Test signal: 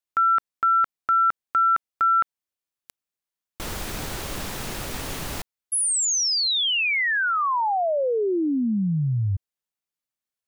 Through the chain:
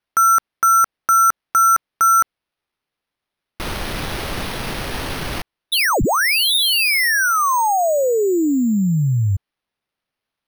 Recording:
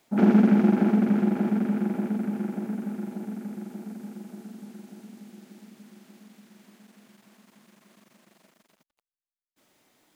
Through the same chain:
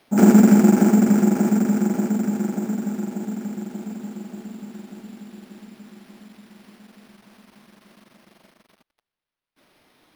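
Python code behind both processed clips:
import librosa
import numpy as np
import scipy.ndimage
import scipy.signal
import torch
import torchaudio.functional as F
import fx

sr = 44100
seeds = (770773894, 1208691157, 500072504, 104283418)

y = np.repeat(x[::6], 6)[:len(x)]
y = y * 10.0 ** (6.0 / 20.0)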